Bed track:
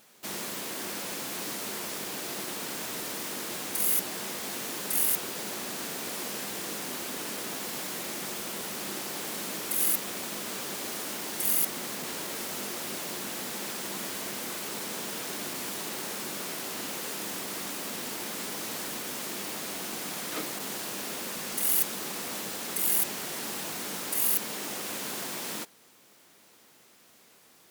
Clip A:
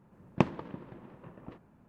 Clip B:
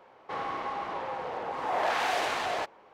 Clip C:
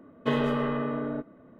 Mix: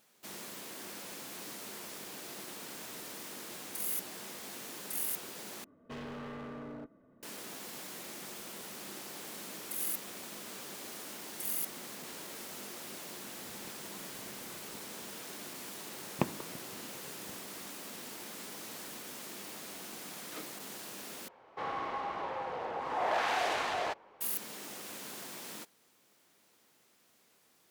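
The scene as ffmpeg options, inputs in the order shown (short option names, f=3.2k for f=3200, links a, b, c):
-filter_complex "[1:a]asplit=2[a][b];[0:a]volume=-9.5dB[c];[3:a]asoftclip=type=hard:threshold=-31dB[d];[a]acompressor=threshold=-49dB:ratio=6:attack=3.2:release=140:knee=1:detection=peak[e];[b]lowshelf=f=88:g=-8.5[f];[c]asplit=3[g][h][i];[g]atrim=end=5.644[j];[d]atrim=end=1.59,asetpts=PTS-STARTPTS,volume=-10.5dB[k];[h]atrim=start=7.226:end=21.284[l];[2:a]atrim=end=2.93,asetpts=PTS-STARTPTS,volume=-3dB[m];[i]atrim=start=24.206[n];[e]atrim=end=1.88,asetpts=PTS-STARTPTS,volume=-4.5dB,afade=t=in:d=0.004:c=hsin,afade=t=out:st=1.876:d=0.004:c=hsin,adelay=13270[o];[f]atrim=end=1.88,asetpts=PTS-STARTPTS,volume=-5dB,afade=t=in:d=0.004:c=hsin,afade=t=out:st=1.876:d=0.004:c=hsin,adelay=15810[p];[j][k]acrossfade=d=0.004:c1=hsin:c2=hsin[q];[q][l]acrossfade=d=0.004:c1=hsin:c2=hsin[r];[r][m]acrossfade=d=0.004:c1=hsin:c2=hsin[s];[s][n]acrossfade=d=0.004:c1=hsin:c2=hsin[t];[t][o][p]amix=inputs=3:normalize=0"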